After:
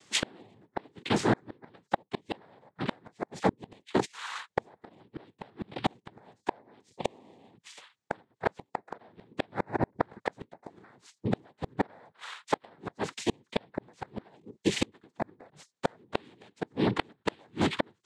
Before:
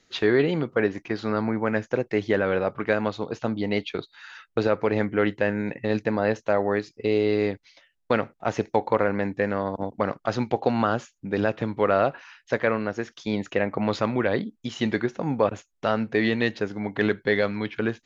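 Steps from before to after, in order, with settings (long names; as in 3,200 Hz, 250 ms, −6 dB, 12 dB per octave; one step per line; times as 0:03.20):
cochlear-implant simulation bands 6
gate with flip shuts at −17 dBFS, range −37 dB
level +4.5 dB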